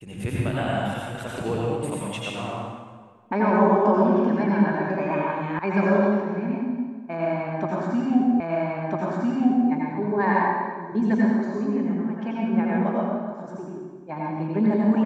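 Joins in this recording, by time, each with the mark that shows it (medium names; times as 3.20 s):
5.59 s: sound stops dead
8.40 s: repeat of the last 1.3 s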